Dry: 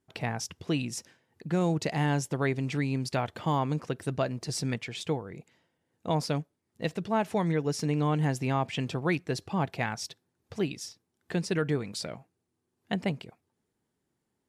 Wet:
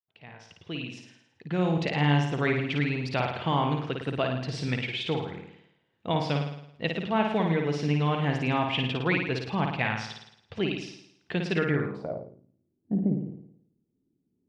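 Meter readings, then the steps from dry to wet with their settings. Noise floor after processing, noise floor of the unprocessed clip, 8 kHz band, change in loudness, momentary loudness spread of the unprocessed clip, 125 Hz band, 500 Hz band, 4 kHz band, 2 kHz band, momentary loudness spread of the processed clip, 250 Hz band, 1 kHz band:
-76 dBFS, -81 dBFS, -11.5 dB, +2.5 dB, 12 LU, +2.0 dB, +2.0 dB, +4.5 dB, +5.5 dB, 13 LU, +2.0 dB, +2.5 dB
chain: opening faded in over 1.97 s; flutter echo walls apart 9.4 m, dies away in 0.73 s; low-pass sweep 3100 Hz -> 290 Hz, 11.57–12.44

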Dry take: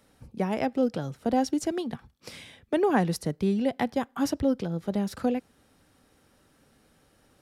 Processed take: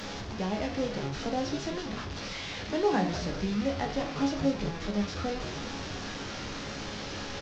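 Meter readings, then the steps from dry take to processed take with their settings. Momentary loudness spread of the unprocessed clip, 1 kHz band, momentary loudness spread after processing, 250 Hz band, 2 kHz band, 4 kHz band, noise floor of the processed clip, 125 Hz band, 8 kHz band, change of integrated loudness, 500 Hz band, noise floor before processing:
16 LU, -2.5 dB, 9 LU, -4.0 dB, +2.0 dB, +6.0 dB, -39 dBFS, -1.0 dB, 0.0 dB, -4.5 dB, -3.5 dB, -64 dBFS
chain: delta modulation 32 kbps, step -27 dBFS; resonator bank C#2 sus4, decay 0.33 s; frequency-shifting echo 0.193 s, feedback 64%, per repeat -120 Hz, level -10 dB; gain +6.5 dB

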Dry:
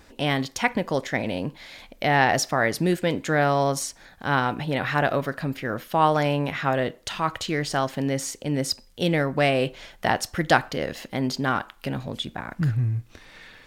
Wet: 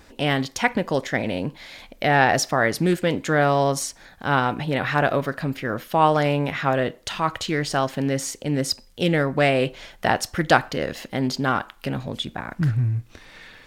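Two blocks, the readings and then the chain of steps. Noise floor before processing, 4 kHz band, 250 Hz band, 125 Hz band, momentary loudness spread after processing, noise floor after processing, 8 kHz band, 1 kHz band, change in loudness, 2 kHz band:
-53 dBFS, +1.5 dB, +2.0 dB, +2.0 dB, 10 LU, -51 dBFS, +1.5 dB, +2.0 dB, +2.0 dB, +2.0 dB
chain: Doppler distortion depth 0.13 ms; gain +2 dB

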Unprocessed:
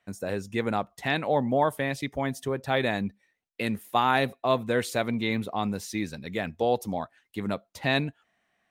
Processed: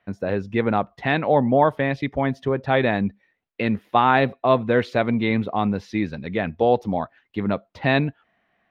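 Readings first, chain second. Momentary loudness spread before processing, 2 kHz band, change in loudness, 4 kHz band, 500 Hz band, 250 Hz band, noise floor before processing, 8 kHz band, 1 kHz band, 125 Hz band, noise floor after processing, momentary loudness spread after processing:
8 LU, +5.0 dB, +6.0 dB, 0.0 dB, +6.5 dB, +7.0 dB, -75 dBFS, under -10 dB, +6.5 dB, +7.5 dB, -71 dBFS, 9 LU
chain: air absorption 290 m; gain +7.5 dB

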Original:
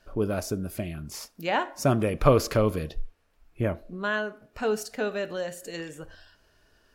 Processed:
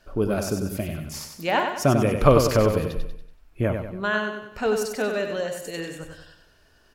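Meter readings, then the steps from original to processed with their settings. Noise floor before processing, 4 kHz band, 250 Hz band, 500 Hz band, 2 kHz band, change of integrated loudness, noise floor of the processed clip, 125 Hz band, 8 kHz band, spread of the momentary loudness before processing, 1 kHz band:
-65 dBFS, +4.0 dB, +4.0 dB, +4.0 dB, +4.0 dB, +4.0 dB, -58 dBFS, +4.0 dB, +4.0 dB, 16 LU, +4.0 dB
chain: feedback echo 95 ms, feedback 45%, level -6 dB; gain +3 dB

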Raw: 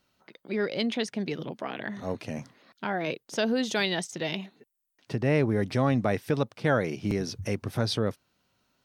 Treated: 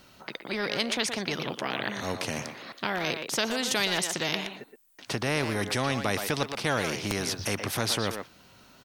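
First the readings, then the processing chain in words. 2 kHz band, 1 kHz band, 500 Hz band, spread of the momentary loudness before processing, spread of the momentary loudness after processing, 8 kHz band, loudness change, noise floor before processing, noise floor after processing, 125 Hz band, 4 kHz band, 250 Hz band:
+3.5 dB, +2.0 dB, -3.0 dB, 10 LU, 9 LU, +10.0 dB, 0.0 dB, -80 dBFS, -56 dBFS, -4.5 dB, +5.5 dB, -4.0 dB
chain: speakerphone echo 0.12 s, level -11 dB; spectral compressor 2:1; gain +2 dB

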